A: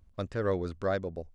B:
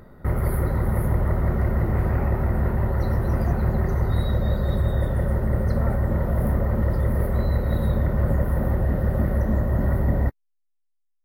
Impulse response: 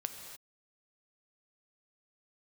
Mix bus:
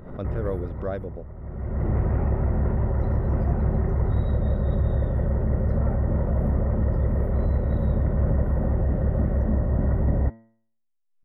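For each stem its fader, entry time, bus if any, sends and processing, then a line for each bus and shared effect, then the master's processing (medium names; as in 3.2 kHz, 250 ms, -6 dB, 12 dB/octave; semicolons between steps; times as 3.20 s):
+0.5 dB, 0.00 s, no send, none
-1.0 dB, 0.00 s, no send, de-hum 112.9 Hz, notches 39; auto duck -20 dB, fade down 1.45 s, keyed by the first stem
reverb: none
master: Savitzky-Golay filter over 25 samples; peaking EQ 1.9 kHz -7 dB 1.9 oct; swell ahead of each attack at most 68 dB/s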